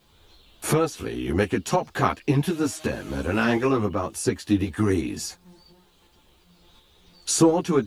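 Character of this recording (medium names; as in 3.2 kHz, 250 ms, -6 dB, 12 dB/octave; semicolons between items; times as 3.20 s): tremolo saw up 2.8 Hz, depth 35%; a quantiser's noise floor 12-bit, dither triangular; a shimmering, thickened sound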